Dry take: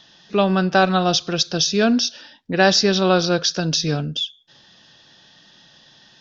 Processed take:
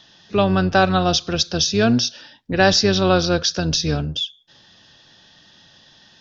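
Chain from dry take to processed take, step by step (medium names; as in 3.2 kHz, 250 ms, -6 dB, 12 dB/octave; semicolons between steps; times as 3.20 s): octave divider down 1 oct, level -6 dB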